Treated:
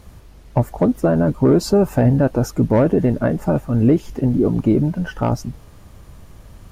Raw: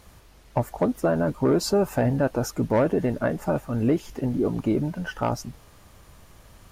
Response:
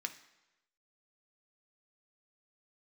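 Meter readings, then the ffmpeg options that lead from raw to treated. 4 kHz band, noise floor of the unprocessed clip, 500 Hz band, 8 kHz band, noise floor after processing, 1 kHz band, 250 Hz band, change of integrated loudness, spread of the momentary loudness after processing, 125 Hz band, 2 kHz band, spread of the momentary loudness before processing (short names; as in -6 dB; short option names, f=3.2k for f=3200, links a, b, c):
+1.0 dB, -52 dBFS, +5.5 dB, +1.0 dB, -43 dBFS, +3.0 dB, +8.0 dB, +7.0 dB, 7 LU, +9.5 dB, +1.5 dB, 7 LU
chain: -af "lowshelf=f=450:g=9.5,volume=1dB"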